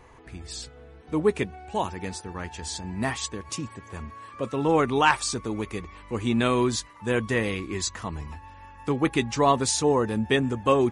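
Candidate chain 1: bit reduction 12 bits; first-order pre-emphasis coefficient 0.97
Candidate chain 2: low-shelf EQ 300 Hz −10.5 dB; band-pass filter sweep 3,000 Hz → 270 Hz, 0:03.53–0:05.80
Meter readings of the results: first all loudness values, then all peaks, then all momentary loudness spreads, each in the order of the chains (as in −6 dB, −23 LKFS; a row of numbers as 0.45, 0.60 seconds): −36.0, −37.5 LKFS; −15.0, −17.5 dBFS; 21, 17 LU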